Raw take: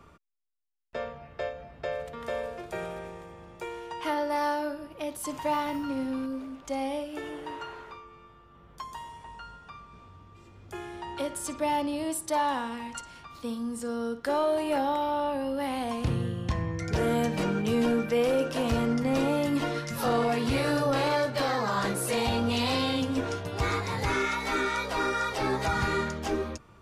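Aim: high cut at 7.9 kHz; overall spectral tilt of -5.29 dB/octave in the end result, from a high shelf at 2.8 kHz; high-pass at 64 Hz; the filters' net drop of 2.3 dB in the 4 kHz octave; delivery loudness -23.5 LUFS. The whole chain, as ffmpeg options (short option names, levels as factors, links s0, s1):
-af "highpass=64,lowpass=7900,highshelf=f=2800:g=4,equalizer=f=4000:t=o:g=-6,volume=2"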